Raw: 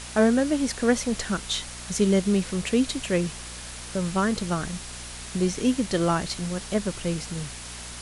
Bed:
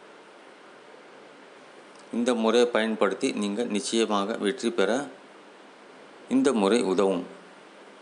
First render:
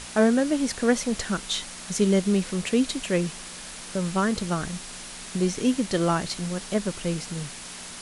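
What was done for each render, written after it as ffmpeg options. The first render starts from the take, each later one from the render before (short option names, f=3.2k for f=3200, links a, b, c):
-af "bandreject=f=60:t=h:w=4,bandreject=f=120:t=h:w=4"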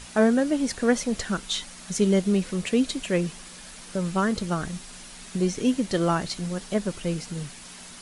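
-af "afftdn=nr=6:nf=-40"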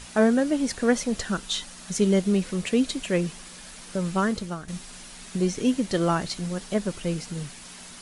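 -filter_complex "[0:a]asettb=1/sr,asplit=3[a][b][c];[a]atrim=end=1.144[d];[b]atrim=start=1.14:end=1.87,asetpts=PTS-STARTPTS,afade=t=in:d=0.004:c=qsin,afade=t=out:st=0.726:d=0.004:c=qsin,bandreject=f=2.2k:w=14[e];[c]atrim=start=1.866[f];[d][e]acrossfade=d=0.004:c1=hsin:c2=qsin[g];[g][f]acrossfade=d=0.004:c1=qsin:c2=hsin,asplit=2[h][i];[h]atrim=end=4.68,asetpts=PTS-STARTPTS,afade=t=out:st=4.26:d=0.42:silence=0.223872[j];[i]atrim=start=4.68,asetpts=PTS-STARTPTS,afade=t=in:d=0.004:c=hsin:silence=0.223872[k];[j][k]concat=n=2:v=0:a=1"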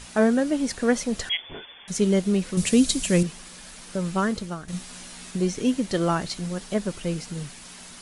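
-filter_complex "[0:a]asettb=1/sr,asplit=3[a][b][c];[a]atrim=end=1.294[d];[b]atrim=start=1.29:end=1.88,asetpts=PTS-STARTPTS,afade=t=in:d=0.004:c=qsin,afade=t=out:st=0.586:d=0.004:c=qsin,lowpass=f=3k:t=q:w=0.5098,lowpass=f=3k:t=q:w=0.6013,lowpass=f=3k:t=q:w=0.9,lowpass=f=3k:t=q:w=2.563,afreqshift=-3500[e];[c]atrim=start=1.876[f];[d][e]acrossfade=d=0.004:c1=hsin:c2=qsin[g];[g][f]acrossfade=d=0.004:c1=qsin:c2=hsin,asettb=1/sr,asplit=3[h][i][j];[h]atrim=end=2.574[k];[i]atrim=start=2.57:end=3.23,asetpts=PTS-STARTPTS,afade=t=in:d=0.004:c=qsin,afade=t=out:st=0.656:d=0.004:c=qsin,bass=f=250:g=9,treble=f=4k:g=12[l];[j]atrim=start=3.226[m];[k][l]acrossfade=d=0.004:c1=hsin:c2=qsin[n];[n][m]acrossfade=d=0.004:c1=qsin:c2=hsin,asettb=1/sr,asplit=3[o][p][q];[o]atrim=end=4.714[r];[p]atrim=start=4.71:end=5.31,asetpts=PTS-STARTPTS,afade=t=in:d=0.004:c=qsin,afade=t=out:st=0.596:d=0.004:c=qsin,asplit=2[s][t];[t]adelay=16,volume=-2.5dB[u];[s][u]amix=inputs=2:normalize=0,atrim=end_sample=26460[v];[q]atrim=start=5.306[w];[r][v]acrossfade=d=0.004:c1=hsin:c2=qsin[x];[x][w]acrossfade=d=0.004:c1=qsin:c2=hsin"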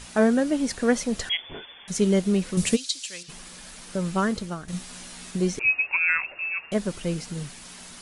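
-filter_complex "[0:a]asplit=3[a][b][c];[a]afade=t=out:st=2.75:d=0.02[d];[b]bandpass=f=4.5k:t=q:w=1.5,afade=t=in:st=2.75:d=0.02,afade=t=out:st=3.28:d=0.02[e];[c]afade=t=in:st=3.28:d=0.02[f];[d][e][f]amix=inputs=3:normalize=0,asettb=1/sr,asplit=3[g][h][i];[g]atrim=end=5.594[j];[h]atrim=start=5.59:end=6.72,asetpts=PTS-STARTPTS,afade=t=in:d=0.004:c=qsin,afade=t=out:st=1.126:d=0.004:c=qsin,lowpass=f=2.4k:t=q:w=0.5098,lowpass=f=2.4k:t=q:w=0.6013,lowpass=f=2.4k:t=q:w=0.9,lowpass=f=2.4k:t=q:w=2.563,afreqshift=-2800[k];[i]atrim=start=6.716[l];[j][k]acrossfade=d=0.004:c1=hsin:c2=qsin[m];[m][l]acrossfade=d=0.004:c1=qsin:c2=hsin"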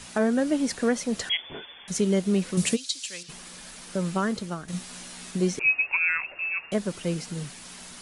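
-filter_complex "[0:a]acrossover=split=100|960[a][b][c];[a]acompressor=threshold=-55dB:ratio=6[d];[d][b][c]amix=inputs=3:normalize=0,alimiter=limit=-13.5dB:level=0:latency=1:release=282"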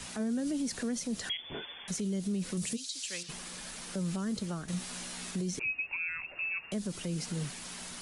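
-filter_complex "[0:a]acrossover=split=290|3600[a][b][c];[b]acompressor=threshold=-37dB:ratio=6[d];[a][d][c]amix=inputs=3:normalize=0,alimiter=level_in=2.5dB:limit=-24dB:level=0:latency=1:release=55,volume=-2.5dB"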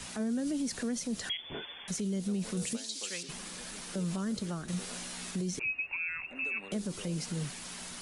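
-filter_complex "[1:a]volume=-27.5dB[a];[0:a][a]amix=inputs=2:normalize=0"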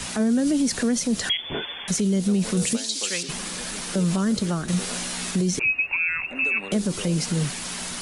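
-af "volume=11.5dB"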